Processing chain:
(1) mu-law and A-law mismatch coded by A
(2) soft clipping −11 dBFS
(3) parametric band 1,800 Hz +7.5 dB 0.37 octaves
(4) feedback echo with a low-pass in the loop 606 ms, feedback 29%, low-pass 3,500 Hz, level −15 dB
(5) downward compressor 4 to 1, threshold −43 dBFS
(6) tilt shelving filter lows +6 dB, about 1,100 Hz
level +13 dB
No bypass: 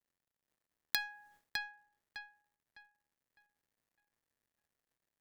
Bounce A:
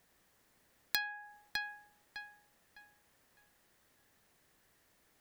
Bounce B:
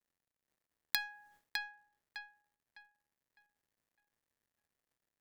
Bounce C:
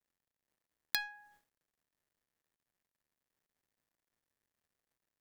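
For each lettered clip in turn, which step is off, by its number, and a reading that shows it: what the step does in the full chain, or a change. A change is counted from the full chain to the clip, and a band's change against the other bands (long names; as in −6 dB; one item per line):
1, distortion level −21 dB
2, distortion level −17 dB
4, change in momentary loudness spread −12 LU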